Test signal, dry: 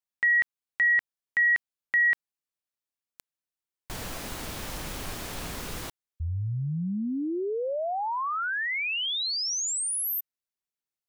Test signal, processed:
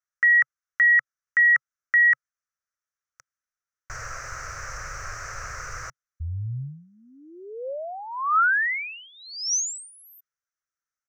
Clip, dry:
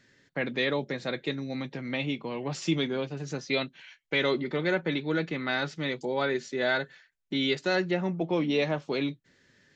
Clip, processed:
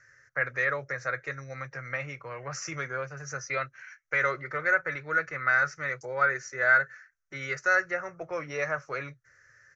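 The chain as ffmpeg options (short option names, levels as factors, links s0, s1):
-af "firequalizer=gain_entry='entry(130,0);entry(190,-27);entry(530,-1);entry(870,-8);entry(1300,12);entry(2000,4);entry(3400,-23);entry(5900,8);entry(9600,-21)':delay=0.05:min_phase=1"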